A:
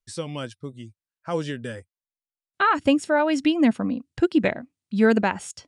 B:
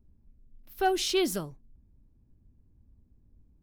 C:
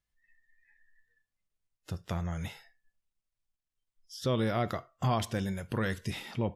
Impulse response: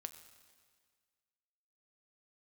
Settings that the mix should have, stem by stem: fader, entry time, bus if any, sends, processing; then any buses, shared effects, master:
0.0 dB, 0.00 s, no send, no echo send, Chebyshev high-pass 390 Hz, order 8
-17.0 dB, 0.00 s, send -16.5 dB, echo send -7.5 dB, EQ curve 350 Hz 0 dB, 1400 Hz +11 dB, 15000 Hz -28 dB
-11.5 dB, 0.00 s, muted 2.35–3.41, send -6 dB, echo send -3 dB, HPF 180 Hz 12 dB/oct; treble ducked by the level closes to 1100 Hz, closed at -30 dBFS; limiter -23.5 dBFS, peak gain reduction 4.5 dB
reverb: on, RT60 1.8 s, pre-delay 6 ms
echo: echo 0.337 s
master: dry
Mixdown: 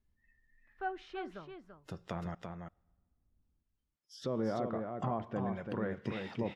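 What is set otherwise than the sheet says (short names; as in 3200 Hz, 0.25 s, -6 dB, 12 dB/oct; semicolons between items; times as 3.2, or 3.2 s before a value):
stem A: muted; stem C -11.5 dB -> -3.0 dB; master: extra high shelf 3400 Hz -9.5 dB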